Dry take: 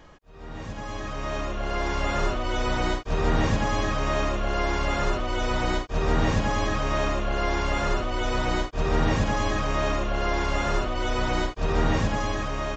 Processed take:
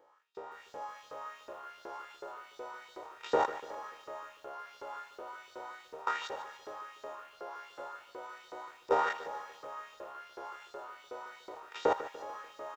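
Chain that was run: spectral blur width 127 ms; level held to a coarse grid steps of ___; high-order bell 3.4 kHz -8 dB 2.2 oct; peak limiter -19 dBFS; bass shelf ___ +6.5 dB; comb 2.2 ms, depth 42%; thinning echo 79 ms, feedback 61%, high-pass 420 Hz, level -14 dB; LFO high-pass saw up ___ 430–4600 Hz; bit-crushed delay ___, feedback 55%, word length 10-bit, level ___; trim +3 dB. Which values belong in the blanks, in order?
23 dB, 170 Hz, 2.7 Hz, 146 ms, -14.5 dB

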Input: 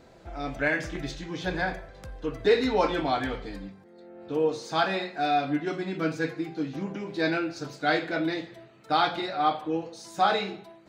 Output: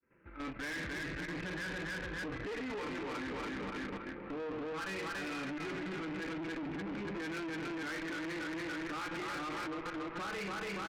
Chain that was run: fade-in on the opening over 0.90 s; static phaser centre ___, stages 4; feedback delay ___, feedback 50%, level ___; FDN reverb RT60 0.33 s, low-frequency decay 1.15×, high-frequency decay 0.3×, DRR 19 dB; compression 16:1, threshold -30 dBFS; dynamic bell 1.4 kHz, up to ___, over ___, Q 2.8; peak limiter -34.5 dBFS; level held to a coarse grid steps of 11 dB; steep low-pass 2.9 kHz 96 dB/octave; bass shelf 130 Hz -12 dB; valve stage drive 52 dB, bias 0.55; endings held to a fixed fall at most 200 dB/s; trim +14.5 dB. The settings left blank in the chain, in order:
1.7 kHz, 285 ms, -5.5 dB, -4 dB, -45 dBFS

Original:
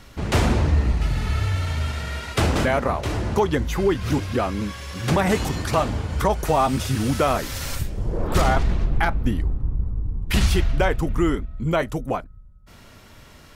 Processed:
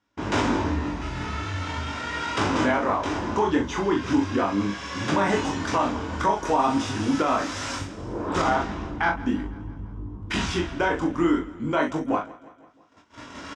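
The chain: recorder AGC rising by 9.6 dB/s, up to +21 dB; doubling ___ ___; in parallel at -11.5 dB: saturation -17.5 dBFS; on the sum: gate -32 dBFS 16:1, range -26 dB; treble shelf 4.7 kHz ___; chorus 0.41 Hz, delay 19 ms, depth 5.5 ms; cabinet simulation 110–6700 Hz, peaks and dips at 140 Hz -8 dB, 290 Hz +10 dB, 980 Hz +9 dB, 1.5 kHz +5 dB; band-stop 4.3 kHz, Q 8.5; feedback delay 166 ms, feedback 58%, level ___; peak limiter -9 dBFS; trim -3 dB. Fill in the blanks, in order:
40 ms, -6 dB, +4.5 dB, -20 dB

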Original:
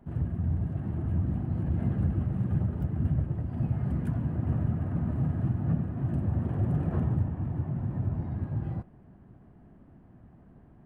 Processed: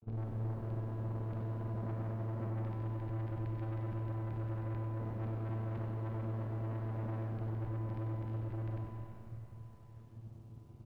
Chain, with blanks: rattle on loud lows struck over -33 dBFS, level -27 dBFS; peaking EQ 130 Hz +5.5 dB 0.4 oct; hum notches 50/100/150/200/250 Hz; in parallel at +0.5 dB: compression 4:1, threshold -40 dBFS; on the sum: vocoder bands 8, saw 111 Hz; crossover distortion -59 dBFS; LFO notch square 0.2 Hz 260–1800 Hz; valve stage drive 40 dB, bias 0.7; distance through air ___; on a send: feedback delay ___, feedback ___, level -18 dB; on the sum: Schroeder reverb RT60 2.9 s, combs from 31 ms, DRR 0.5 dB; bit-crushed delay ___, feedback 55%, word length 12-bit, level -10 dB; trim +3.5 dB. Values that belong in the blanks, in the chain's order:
180 m, 342 ms, 16%, 96 ms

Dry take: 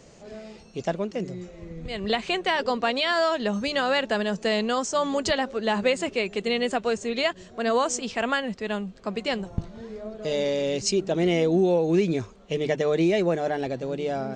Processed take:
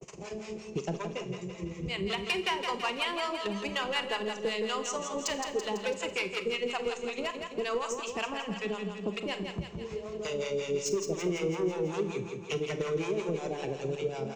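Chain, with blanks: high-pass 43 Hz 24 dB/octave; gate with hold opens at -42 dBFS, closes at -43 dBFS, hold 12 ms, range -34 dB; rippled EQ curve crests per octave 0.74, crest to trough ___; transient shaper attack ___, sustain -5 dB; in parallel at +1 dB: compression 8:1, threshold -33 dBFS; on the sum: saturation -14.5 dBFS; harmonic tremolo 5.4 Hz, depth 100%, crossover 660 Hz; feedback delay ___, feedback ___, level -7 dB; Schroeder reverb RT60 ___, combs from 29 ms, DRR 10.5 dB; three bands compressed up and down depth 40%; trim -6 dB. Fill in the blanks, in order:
9 dB, +7 dB, 166 ms, 51%, 0.36 s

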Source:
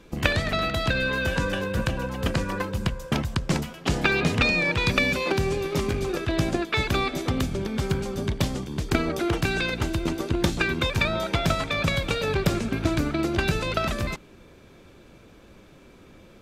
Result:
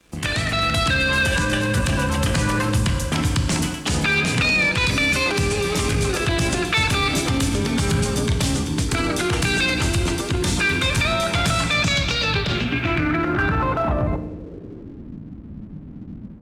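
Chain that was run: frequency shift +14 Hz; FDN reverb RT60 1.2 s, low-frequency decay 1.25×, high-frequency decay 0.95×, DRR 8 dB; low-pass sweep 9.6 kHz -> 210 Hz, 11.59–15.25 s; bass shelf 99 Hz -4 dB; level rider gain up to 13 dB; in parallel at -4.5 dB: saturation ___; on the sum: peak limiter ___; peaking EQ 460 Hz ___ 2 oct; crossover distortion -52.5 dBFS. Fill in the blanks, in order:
-18.5 dBFS, -9.5 dBFS, -7 dB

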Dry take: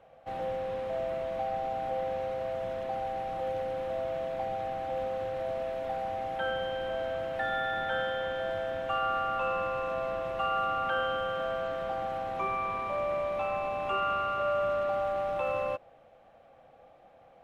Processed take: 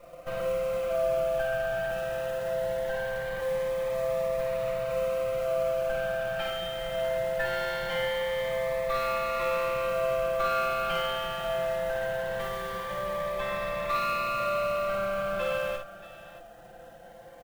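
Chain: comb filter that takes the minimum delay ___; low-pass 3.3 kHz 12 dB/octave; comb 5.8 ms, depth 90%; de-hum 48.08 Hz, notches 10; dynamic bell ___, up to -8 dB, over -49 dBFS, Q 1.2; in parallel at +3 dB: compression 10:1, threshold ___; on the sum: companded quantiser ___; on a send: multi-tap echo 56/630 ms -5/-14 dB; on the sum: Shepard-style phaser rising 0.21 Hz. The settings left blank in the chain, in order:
1.6 ms, 290 Hz, -39 dBFS, 6-bit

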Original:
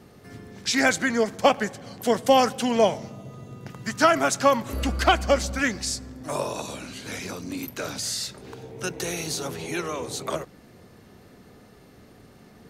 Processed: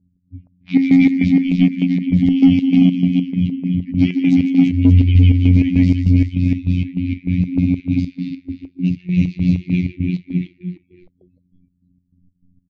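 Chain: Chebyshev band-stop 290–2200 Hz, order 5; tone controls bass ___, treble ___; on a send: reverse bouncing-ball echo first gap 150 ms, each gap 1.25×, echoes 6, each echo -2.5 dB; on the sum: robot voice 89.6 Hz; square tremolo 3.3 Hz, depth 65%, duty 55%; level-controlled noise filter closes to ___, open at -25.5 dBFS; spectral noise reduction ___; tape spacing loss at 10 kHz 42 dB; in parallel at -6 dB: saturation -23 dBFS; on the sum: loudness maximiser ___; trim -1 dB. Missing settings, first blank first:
+8 dB, -9 dB, 310 Hz, 28 dB, +14.5 dB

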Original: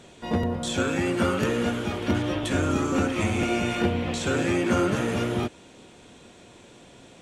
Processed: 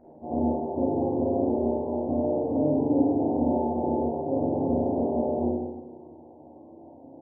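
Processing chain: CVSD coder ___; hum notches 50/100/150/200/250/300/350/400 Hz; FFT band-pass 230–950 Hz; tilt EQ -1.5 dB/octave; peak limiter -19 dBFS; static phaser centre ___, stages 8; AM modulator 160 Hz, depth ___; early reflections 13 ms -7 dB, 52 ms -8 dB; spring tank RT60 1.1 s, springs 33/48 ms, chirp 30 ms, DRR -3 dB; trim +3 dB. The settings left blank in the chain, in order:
16 kbps, 670 Hz, 65%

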